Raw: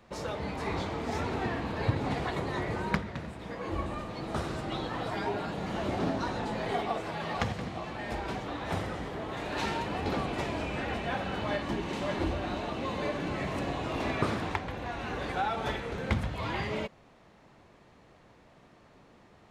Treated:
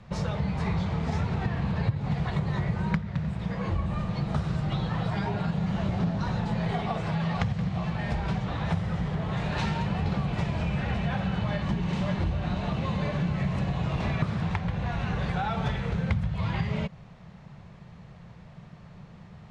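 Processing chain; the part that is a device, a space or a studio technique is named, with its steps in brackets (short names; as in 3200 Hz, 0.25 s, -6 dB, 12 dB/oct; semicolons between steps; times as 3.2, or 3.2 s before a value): jukebox (LPF 6900 Hz 12 dB/oct; resonant low shelf 220 Hz +8.5 dB, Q 3; compressor 4:1, threshold -29 dBFS, peak gain reduction 16 dB); gain +4 dB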